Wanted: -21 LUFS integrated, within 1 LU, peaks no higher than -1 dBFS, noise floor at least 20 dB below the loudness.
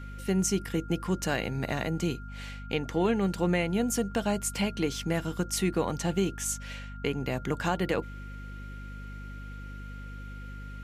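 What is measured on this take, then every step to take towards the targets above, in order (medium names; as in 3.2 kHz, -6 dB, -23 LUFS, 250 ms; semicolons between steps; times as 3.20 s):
hum 50 Hz; highest harmonic 250 Hz; hum level -38 dBFS; steady tone 1.4 kHz; tone level -47 dBFS; loudness -30.0 LUFS; peak level -15.5 dBFS; loudness target -21.0 LUFS
-> de-hum 50 Hz, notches 5; band-stop 1.4 kHz, Q 30; trim +9 dB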